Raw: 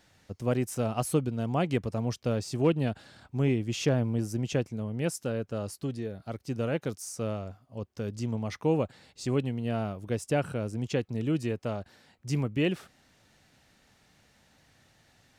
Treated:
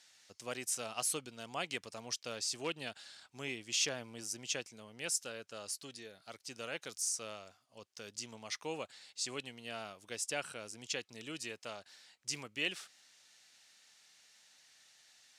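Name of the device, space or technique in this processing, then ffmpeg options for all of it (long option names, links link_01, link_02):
piezo pickup straight into a mixer: -af "lowpass=7000,aderivative,volume=9dB"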